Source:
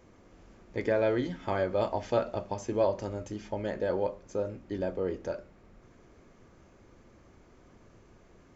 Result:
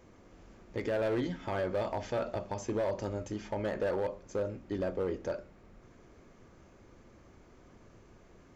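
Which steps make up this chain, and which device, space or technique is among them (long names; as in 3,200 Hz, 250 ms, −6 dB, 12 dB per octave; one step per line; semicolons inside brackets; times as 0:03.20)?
0:03.31–0:04.01: parametric band 1,100 Hz +3.5 dB 1.8 octaves
limiter into clipper (brickwall limiter −22 dBFS, peak gain reduction 7 dB; hard clipping −26.5 dBFS, distortion −17 dB)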